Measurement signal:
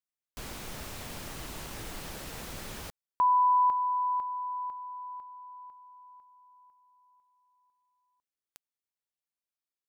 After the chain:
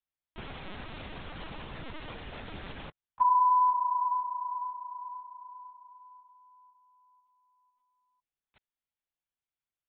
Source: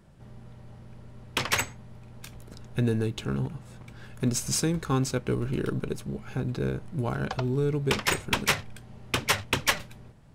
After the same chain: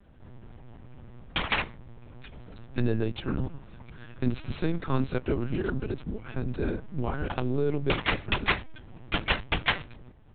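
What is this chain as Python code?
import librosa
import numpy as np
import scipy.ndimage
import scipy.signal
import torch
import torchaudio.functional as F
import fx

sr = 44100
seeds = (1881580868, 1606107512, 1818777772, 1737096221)

y = fx.lpc_vocoder(x, sr, seeds[0], excitation='pitch_kept', order=10)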